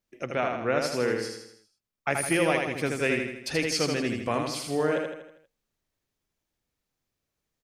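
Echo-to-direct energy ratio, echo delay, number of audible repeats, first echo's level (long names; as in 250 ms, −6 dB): −3.0 dB, 80 ms, 6, −4.0 dB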